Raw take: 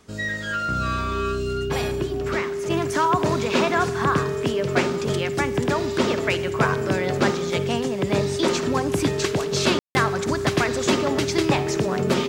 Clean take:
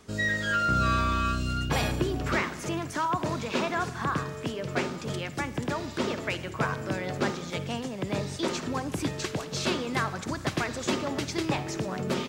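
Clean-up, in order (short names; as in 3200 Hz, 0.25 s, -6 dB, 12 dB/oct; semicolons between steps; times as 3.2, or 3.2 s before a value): notch 400 Hz, Q 30; room tone fill 9.79–9.95; gain correction -7.5 dB, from 2.7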